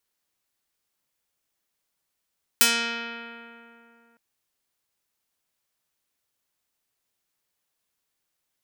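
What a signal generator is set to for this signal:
Karplus-Strong string A#3, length 1.56 s, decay 2.85 s, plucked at 0.42, medium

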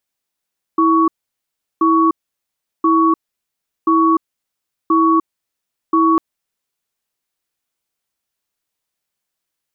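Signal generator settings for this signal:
tone pair in a cadence 326 Hz, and 1,120 Hz, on 0.30 s, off 0.73 s, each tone −12.5 dBFS 5.40 s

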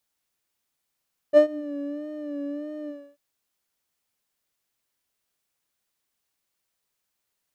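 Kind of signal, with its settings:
subtractive patch with vibrato D5, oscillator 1 square, oscillator 2 saw, interval +12 semitones, oscillator 2 level −10 dB, sub −18 dB, noise −27.5 dB, filter bandpass, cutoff 200 Hz, Q 12, filter envelope 1 octave, filter sustain 50%, attack 42 ms, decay 0.10 s, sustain −23 dB, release 0.29 s, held 1.55 s, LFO 1.6 Hz, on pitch 56 cents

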